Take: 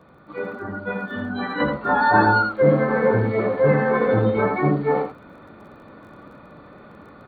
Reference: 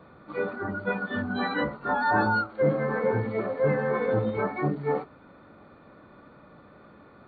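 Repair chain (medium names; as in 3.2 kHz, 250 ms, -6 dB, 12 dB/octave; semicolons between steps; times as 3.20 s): de-click; inverse comb 81 ms -6 dB; trim 0 dB, from 1.60 s -6.5 dB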